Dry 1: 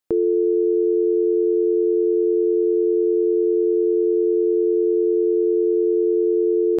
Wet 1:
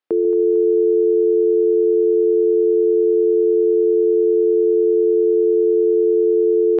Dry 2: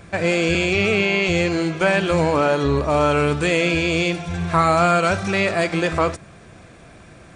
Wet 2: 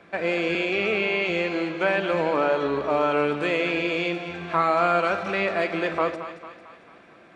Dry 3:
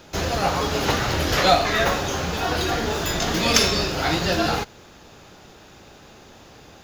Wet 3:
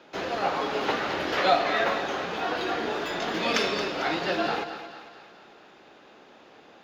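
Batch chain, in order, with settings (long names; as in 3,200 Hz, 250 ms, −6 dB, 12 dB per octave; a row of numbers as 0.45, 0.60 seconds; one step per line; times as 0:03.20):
three-way crossover with the lows and the highs turned down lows −23 dB, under 210 Hz, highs −19 dB, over 4,000 Hz
on a send: echo with a time of its own for lows and highs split 700 Hz, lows 143 ms, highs 224 ms, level −10.5 dB
on the sum: normalise the peak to −9 dBFS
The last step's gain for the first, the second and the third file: +2.5, −4.5, −4.0 decibels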